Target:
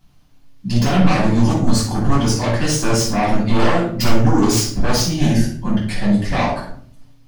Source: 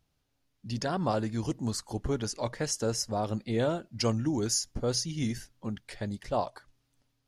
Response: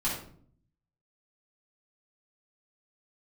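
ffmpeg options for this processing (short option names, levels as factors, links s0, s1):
-filter_complex "[0:a]aeval=exprs='0.178*sin(PI/2*4.47*val(0)/0.178)':c=same[s0];[1:a]atrim=start_sample=2205[s1];[s0][s1]afir=irnorm=-1:irlink=0,volume=0.473"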